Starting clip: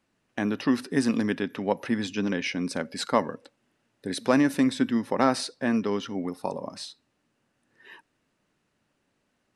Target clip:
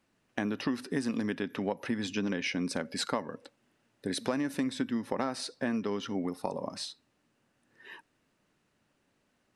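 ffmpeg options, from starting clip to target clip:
-af "acompressor=threshold=0.0398:ratio=6"

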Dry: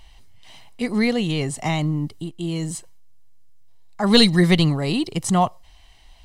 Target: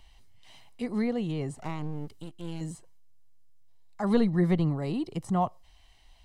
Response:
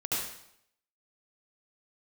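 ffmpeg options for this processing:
-filter_complex "[0:a]acrossover=split=420|1500[s0][s1][s2];[s2]acompressor=threshold=0.01:ratio=10[s3];[s0][s1][s3]amix=inputs=3:normalize=0,asettb=1/sr,asplit=3[s4][s5][s6];[s4]atrim=end=1.564[s7];[s5]atrim=start=1.56:end=2.61,asetpts=PTS-STARTPTS,afade=t=in:d=0.004:c=qsin,afade=t=out:st=1.046:d=0.004:c=qsin,aeval=exprs='max(val(0),0)':c=same[s8];[s6]atrim=start=2.606[s9];[s7][s8]acrossfade=d=0.004:c1=hsin:c2=qsin[s10];[s10][s9]acrossfade=d=0.004:c1=qsin:c2=hsin,volume=0.398"

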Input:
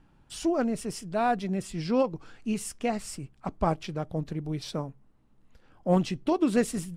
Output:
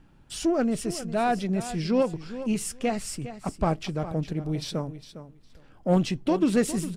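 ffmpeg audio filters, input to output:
-filter_complex "[0:a]equalizer=f=970:w=1.5:g=-3.5,asplit=2[s0][s1];[s1]asoftclip=type=tanh:threshold=0.0447,volume=0.631[s2];[s0][s2]amix=inputs=2:normalize=0,aecho=1:1:407|814:0.224|0.0336"

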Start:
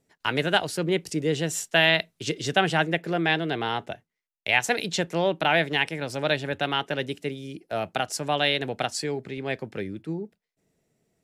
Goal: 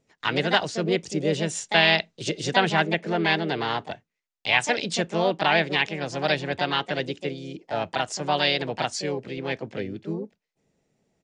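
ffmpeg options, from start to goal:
-filter_complex "[0:a]aresample=16000,aresample=44100,asplit=2[s0][s1];[s1]asetrate=55563,aresample=44100,atempo=0.793701,volume=0.501[s2];[s0][s2]amix=inputs=2:normalize=0"

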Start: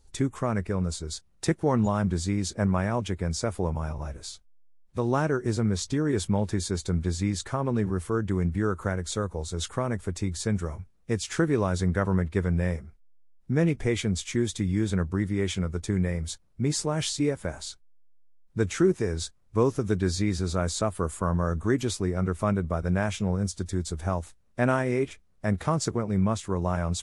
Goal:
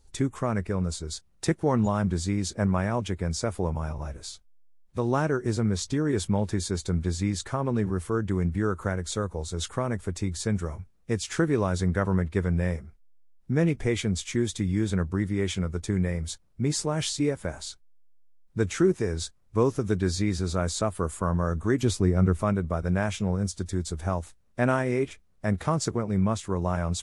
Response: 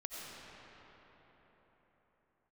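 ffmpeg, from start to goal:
-filter_complex "[0:a]asettb=1/sr,asplit=3[s0][s1][s2];[s0]atrim=end=21.834[s3];[s1]atrim=start=21.83:end=22.42,asetpts=PTS-STARTPTS,afade=t=in:d=0.004:c=qsin,afade=t=out:st=0.586:d=0.004:c=qsin,lowshelf=f=350:g=7[s4];[s2]atrim=start=22.416[s5];[s3][s4]acrossfade=d=0.004:c1=hsin:c2=qsin[s6];[s6][s5]acrossfade=d=0.004:c1=qsin:c2=hsin"

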